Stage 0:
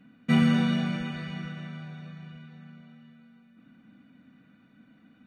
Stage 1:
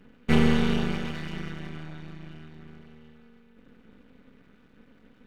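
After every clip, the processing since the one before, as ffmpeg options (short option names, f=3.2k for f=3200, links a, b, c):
-af "aeval=exprs='max(val(0),0)':c=same,volume=5dB"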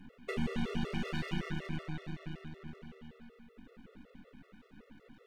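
-af "acompressor=threshold=-28dB:ratio=12,afftfilt=real='re*gt(sin(2*PI*5.3*pts/sr)*(1-2*mod(floor(b*sr/1024/360),2)),0)':imag='im*gt(sin(2*PI*5.3*pts/sr)*(1-2*mod(floor(b*sr/1024/360),2)),0)':win_size=1024:overlap=0.75,volume=2.5dB"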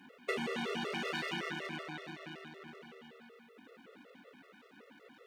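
-af "highpass=390,volume=5dB"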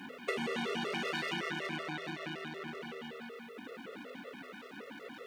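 -af "bandreject=f=83.94:t=h:w=4,bandreject=f=167.88:t=h:w=4,bandreject=f=251.82:t=h:w=4,acompressor=threshold=-52dB:ratio=2,volume=11dB"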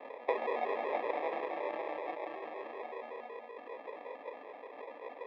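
-af "acrusher=samples=30:mix=1:aa=0.000001,highpass=f=410:w=0.5412,highpass=f=410:w=1.3066,equalizer=f=570:t=q:w=4:g=5,equalizer=f=810:t=q:w=4:g=4,equalizer=f=1.3k:t=q:w=4:g=-4,lowpass=f=2.6k:w=0.5412,lowpass=f=2.6k:w=1.3066,volume=3dB"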